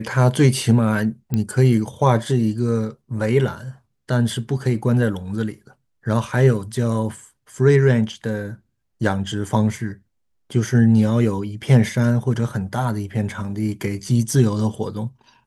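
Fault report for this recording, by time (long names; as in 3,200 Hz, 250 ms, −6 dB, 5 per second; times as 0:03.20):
0:01.34: click −10 dBFS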